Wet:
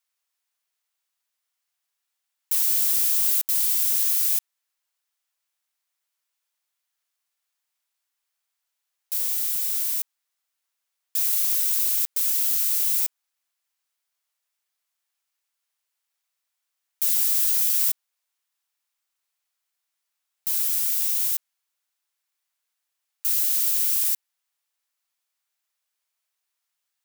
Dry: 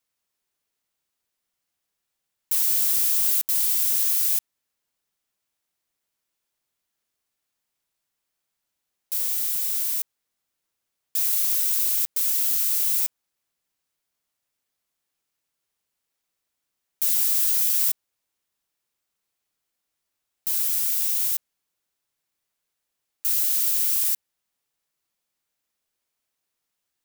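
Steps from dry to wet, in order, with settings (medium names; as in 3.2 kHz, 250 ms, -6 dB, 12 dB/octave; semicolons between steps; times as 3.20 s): high-pass 820 Hz 12 dB/octave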